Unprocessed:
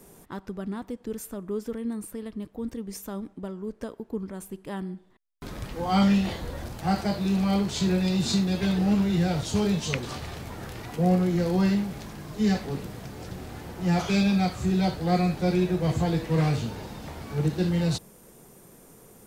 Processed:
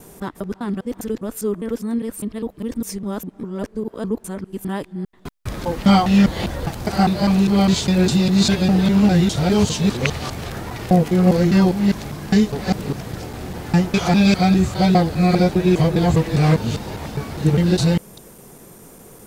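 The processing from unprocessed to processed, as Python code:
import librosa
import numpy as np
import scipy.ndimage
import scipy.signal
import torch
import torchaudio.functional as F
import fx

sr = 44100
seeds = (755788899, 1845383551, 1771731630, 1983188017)

y = fx.local_reverse(x, sr, ms=202.0)
y = F.gain(torch.from_numpy(y), 8.5).numpy()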